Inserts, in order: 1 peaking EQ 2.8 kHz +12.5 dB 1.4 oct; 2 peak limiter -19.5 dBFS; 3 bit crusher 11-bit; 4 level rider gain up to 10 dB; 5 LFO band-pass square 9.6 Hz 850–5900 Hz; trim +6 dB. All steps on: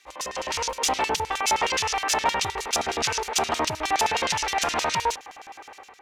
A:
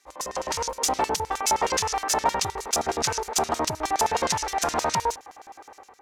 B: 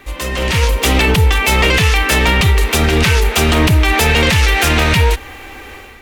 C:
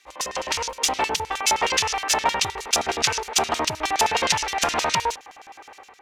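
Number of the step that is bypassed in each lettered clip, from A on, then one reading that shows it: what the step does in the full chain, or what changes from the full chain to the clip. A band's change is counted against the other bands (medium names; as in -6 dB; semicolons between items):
1, 2 kHz band -6.5 dB; 5, 125 Hz band +17.5 dB; 2, mean gain reduction 2.5 dB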